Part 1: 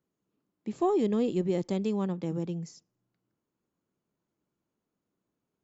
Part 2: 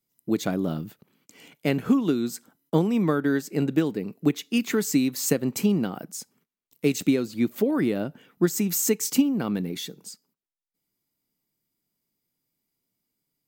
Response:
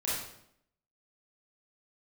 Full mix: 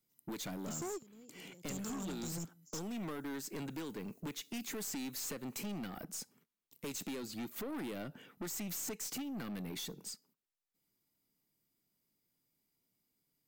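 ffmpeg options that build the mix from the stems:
-filter_complex "[0:a]bass=f=250:g=8,treble=f=4k:g=10,aexciter=amount=5.8:drive=4.5:freq=5.4k,volume=-0.5dB[a];[1:a]volume=-1.5dB,asplit=2[b][c];[c]apad=whole_len=248661[d];[a][d]sidechaingate=range=-33dB:threshold=-46dB:ratio=16:detection=peak[e];[e][b]amix=inputs=2:normalize=0,acrossover=split=880|4300[f][g][h];[f]acompressor=threshold=-35dB:ratio=4[i];[g]acompressor=threshold=-44dB:ratio=4[j];[h]acompressor=threshold=-35dB:ratio=4[k];[i][j][k]amix=inputs=3:normalize=0,aeval=exprs='(tanh(79.4*val(0)+0.15)-tanh(0.15))/79.4':c=same"

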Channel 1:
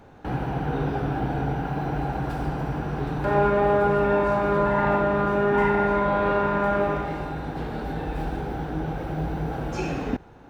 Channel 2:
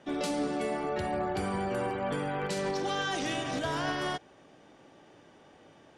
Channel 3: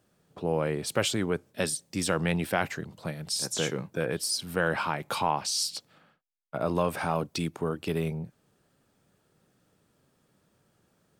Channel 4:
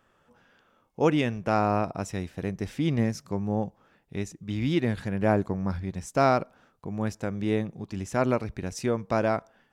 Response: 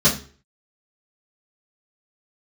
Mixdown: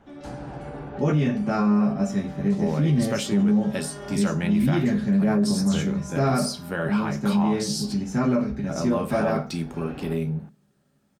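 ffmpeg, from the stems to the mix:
-filter_complex "[0:a]lowpass=3.3k,acompressor=threshold=-27dB:ratio=6,volume=-6.5dB[a];[1:a]alimiter=level_in=1dB:limit=-24dB:level=0:latency=1,volume=-1dB,volume=-12.5dB,asplit=2[b][c];[c]volume=-21.5dB[d];[2:a]adelay=2150,volume=-2.5dB,asplit=2[e][f];[f]volume=-23dB[g];[3:a]volume=-7.5dB,asplit=3[h][i][j];[i]volume=-11dB[k];[j]apad=whole_len=462664[l];[a][l]sidechaincompress=threshold=-48dB:ratio=8:attack=16:release=390[m];[4:a]atrim=start_sample=2205[n];[d][g][k]amix=inputs=3:normalize=0[o];[o][n]afir=irnorm=-1:irlink=0[p];[m][b][e][h][p]amix=inputs=5:normalize=0,alimiter=limit=-14dB:level=0:latency=1:release=20"

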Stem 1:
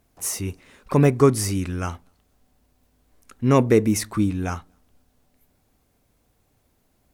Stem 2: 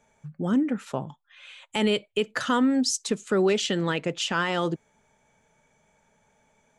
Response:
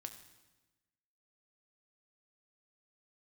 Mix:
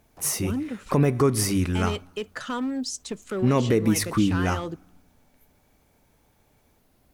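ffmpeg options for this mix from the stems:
-filter_complex "[0:a]equalizer=f=7.4k:t=o:w=0.52:g=-4,bandreject=f=50:t=h:w=6,bandreject=f=100:t=h:w=6,volume=1dB,asplit=2[a][b];[b]volume=-9dB[c];[1:a]asoftclip=type=hard:threshold=-17.5dB,volume=-6dB[d];[2:a]atrim=start_sample=2205[e];[c][e]afir=irnorm=-1:irlink=0[f];[a][d][f]amix=inputs=3:normalize=0,alimiter=limit=-11.5dB:level=0:latency=1:release=113"

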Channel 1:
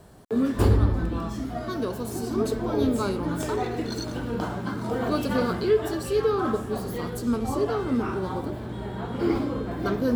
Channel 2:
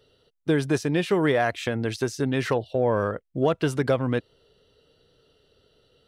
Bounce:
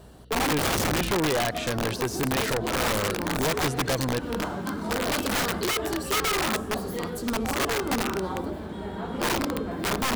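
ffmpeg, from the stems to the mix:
-filter_complex "[0:a]bandreject=f=60:t=h:w=6,bandreject=f=120:t=h:w=6,bandreject=f=180:t=h:w=6,bandreject=f=240:t=h:w=6,bandreject=f=300:t=h:w=6,bandreject=f=360:t=h:w=6,volume=0.5dB[a];[1:a]aeval=exprs='0.299*sin(PI/2*2.24*val(0)/0.299)':c=same,aeval=exprs='val(0)+0.01*(sin(2*PI*60*n/s)+sin(2*PI*2*60*n/s)/2+sin(2*PI*3*60*n/s)/3+sin(2*PI*4*60*n/s)/4+sin(2*PI*5*60*n/s)/5)':c=same,volume=-10.5dB,asplit=2[b][c];[c]apad=whole_len=448044[d];[a][d]sidechaincompress=threshold=-31dB:ratio=20:attack=28:release=112[e];[e][b]amix=inputs=2:normalize=0,aeval=exprs='(mod(10*val(0)+1,2)-1)/10':c=same"

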